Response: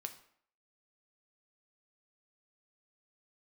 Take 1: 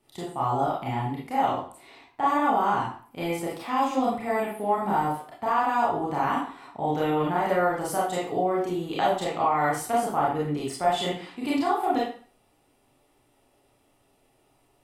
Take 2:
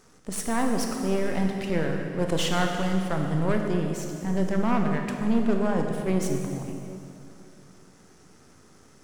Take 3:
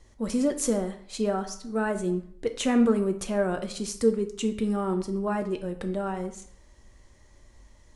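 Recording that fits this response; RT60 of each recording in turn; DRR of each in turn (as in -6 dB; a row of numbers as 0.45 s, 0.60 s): 3; 0.45 s, 2.7 s, 0.60 s; -6.5 dB, 2.0 dB, 6.0 dB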